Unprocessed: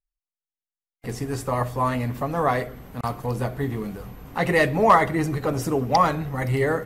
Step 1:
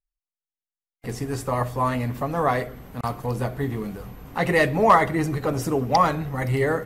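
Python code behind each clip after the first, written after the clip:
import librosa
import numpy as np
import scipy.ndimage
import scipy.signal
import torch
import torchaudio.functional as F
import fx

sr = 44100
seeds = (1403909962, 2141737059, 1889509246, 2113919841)

y = x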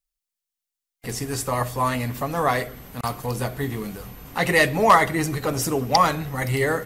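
y = fx.high_shelf(x, sr, hz=2300.0, db=11.0)
y = y * librosa.db_to_amplitude(-1.0)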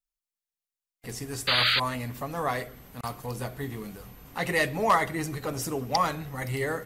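y = fx.spec_paint(x, sr, seeds[0], shape='noise', start_s=1.47, length_s=0.33, low_hz=1200.0, high_hz=4800.0, level_db=-16.0)
y = y * librosa.db_to_amplitude(-7.5)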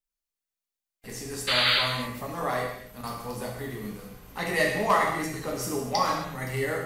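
y = fx.rev_gated(x, sr, seeds[1], gate_ms=300, shape='falling', drr_db=-1.5)
y = y * librosa.db_to_amplitude(-3.0)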